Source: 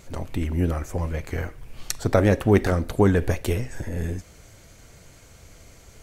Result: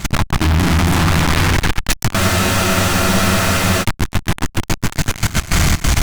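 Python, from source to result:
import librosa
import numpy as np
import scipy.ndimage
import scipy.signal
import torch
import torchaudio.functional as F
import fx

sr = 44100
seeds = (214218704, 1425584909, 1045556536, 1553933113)

p1 = fx.reverse_delay_fb(x, sr, ms=131, feedback_pct=59, wet_db=-3.5)
p2 = fx.room_shoebox(p1, sr, seeds[0], volume_m3=560.0, walls='furnished', distance_m=0.77)
p3 = np.clip(p2, -10.0 ** (-20.5 / 20.0), 10.0 ** (-20.5 / 20.0))
p4 = fx.high_shelf(p3, sr, hz=5200.0, db=-9.0)
p5 = p4 + fx.echo_feedback(p4, sr, ms=290, feedback_pct=41, wet_db=-7.5, dry=0)
p6 = fx.fuzz(p5, sr, gain_db=51.0, gate_db=-57.0)
p7 = fx.level_steps(p6, sr, step_db=17)
p8 = fx.peak_eq(p7, sr, hz=490.0, db=-14.5, octaves=0.76)
p9 = fx.spec_freeze(p8, sr, seeds[1], at_s=2.18, hold_s=1.65)
y = p9 * librosa.db_to_amplitude(5.5)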